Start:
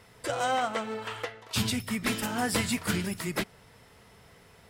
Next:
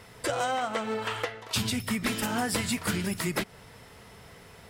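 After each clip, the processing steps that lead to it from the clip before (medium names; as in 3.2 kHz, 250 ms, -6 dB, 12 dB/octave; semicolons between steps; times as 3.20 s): compression, threshold -31 dBFS, peak gain reduction 8.5 dB; trim +5.5 dB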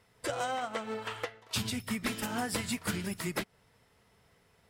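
upward expansion 1.5:1, over -51 dBFS; trim -3.5 dB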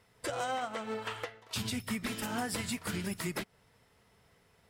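peak limiter -25 dBFS, peak gain reduction 5.5 dB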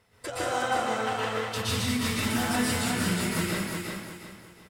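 on a send: feedback delay 360 ms, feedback 34%, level -4.5 dB; on the sum: plate-style reverb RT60 1 s, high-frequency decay 0.85×, pre-delay 105 ms, DRR -6.5 dB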